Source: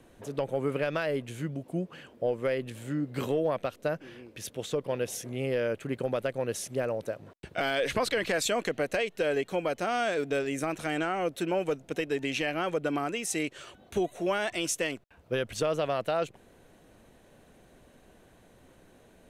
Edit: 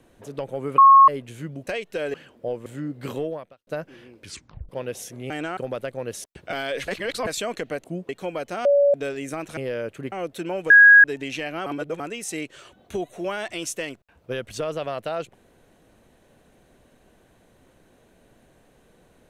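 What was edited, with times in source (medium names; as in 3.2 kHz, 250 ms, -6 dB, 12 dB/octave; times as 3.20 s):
0.78–1.08 s: bleep 1.09 kHz -7.5 dBFS
1.67–1.92 s: swap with 8.92–9.39 s
2.44–2.79 s: delete
3.38–3.80 s: fade out quadratic
4.35 s: tape stop 0.47 s
5.43–5.98 s: swap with 10.87–11.14 s
6.65–7.32 s: delete
7.96–8.35 s: reverse
9.95–10.24 s: bleep 569 Hz -13.5 dBFS
11.72–12.06 s: bleep 1.65 kHz -7 dBFS
12.68–13.02 s: reverse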